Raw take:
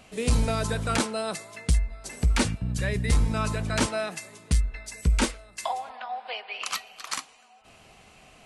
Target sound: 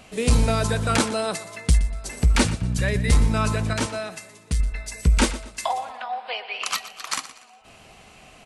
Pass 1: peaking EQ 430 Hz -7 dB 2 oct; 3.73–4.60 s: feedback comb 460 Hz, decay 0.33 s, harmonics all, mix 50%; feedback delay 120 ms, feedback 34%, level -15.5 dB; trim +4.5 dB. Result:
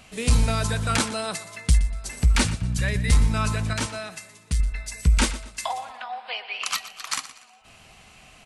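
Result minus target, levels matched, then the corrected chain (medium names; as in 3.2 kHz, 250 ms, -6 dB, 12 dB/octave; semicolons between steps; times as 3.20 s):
500 Hz band -5.0 dB
3.73–4.60 s: feedback comb 460 Hz, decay 0.33 s, harmonics all, mix 50%; feedback delay 120 ms, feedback 34%, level -15.5 dB; trim +4.5 dB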